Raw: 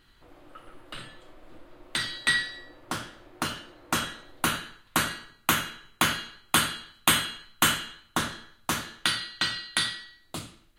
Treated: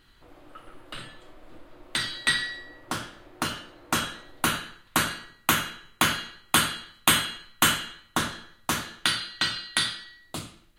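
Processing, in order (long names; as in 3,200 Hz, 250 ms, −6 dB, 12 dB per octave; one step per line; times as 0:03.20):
hum removal 174.9 Hz, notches 18
level +1.5 dB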